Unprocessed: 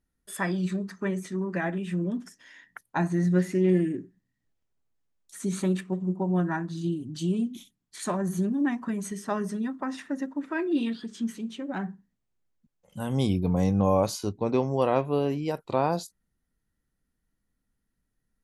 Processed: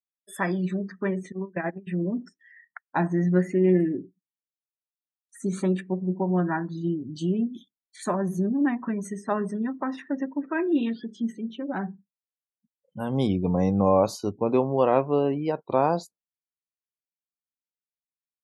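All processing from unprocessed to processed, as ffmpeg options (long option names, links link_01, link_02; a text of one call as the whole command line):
ffmpeg -i in.wav -filter_complex "[0:a]asettb=1/sr,asplit=3[link_01][link_02][link_03];[link_01]atrim=end=1.324[link_04];[link_02]atrim=start=1.32:end=1.87,asetpts=PTS-STARTPTS,afade=type=in:duration=0.004:curve=qsin,afade=type=out:start_time=0.546:duration=0.004:curve=qsin,highpass=frequency=56:poles=1,agate=range=-19dB:threshold=-29dB:ratio=16:release=100:detection=peak[link_05];[link_03]atrim=start=1.866[link_06];[link_04][link_05]acrossfade=duration=0.004:curve1=hsin:curve2=qsin[link_07];[link_07][link_06]acrossfade=duration=0.004:curve1=qsin:curve2=hsin,afftdn=noise_reduction=34:noise_floor=-46,highpass=frequency=210:poles=1,highshelf=frequency=2300:gain=-8,volume=4.5dB" out.wav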